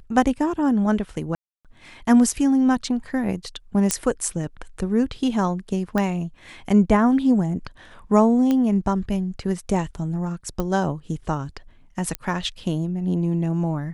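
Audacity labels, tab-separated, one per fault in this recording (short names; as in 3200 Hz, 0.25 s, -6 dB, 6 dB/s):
1.350000	1.650000	gap 0.297 s
3.910000	3.910000	pop -4 dBFS
5.980000	5.980000	pop -11 dBFS
8.510000	8.510000	pop -11 dBFS
10.600000	10.600000	pop -13 dBFS
12.150000	12.150000	pop -10 dBFS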